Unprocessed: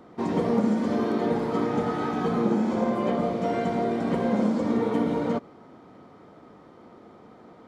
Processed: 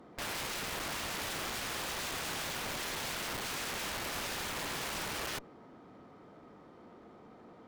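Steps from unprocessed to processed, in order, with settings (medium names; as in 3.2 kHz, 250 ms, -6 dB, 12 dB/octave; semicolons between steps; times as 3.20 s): integer overflow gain 26.5 dB; Chebyshev shaper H 6 -6 dB, 7 -8 dB, 8 -12 dB, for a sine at -26.5 dBFS; trim -9 dB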